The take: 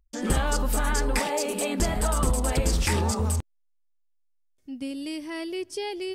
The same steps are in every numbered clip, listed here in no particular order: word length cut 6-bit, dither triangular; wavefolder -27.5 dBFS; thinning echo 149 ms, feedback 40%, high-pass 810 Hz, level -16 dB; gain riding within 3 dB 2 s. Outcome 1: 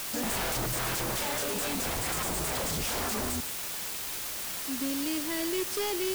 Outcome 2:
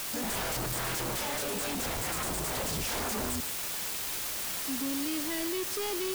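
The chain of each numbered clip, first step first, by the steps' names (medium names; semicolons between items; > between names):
thinning echo > wavefolder > gain riding > word length cut; thinning echo > word length cut > wavefolder > gain riding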